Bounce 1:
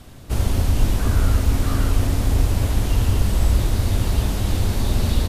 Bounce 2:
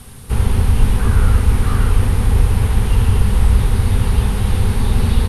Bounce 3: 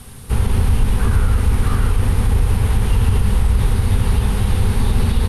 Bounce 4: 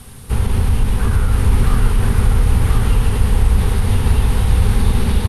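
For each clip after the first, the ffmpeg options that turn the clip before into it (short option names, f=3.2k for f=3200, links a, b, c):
-filter_complex "[0:a]superequalizer=6b=0.316:8b=0.355:16b=3.55,acrossover=split=3500[a][b];[b]acompressor=threshold=-42dB:ratio=4:attack=1:release=60[c];[a][c]amix=inputs=2:normalize=0,volume=5dB"
-af "alimiter=limit=-6.5dB:level=0:latency=1:release=59,aeval=exprs='0.473*(cos(1*acos(clip(val(0)/0.473,-1,1)))-cos(1*PI/2))+0.00596*(cos(4*acos(clip(val(0)/0.473,-1,1)))-cos(4*PI/2))':c=same"
-af "aecho=1:1:1030:0.708"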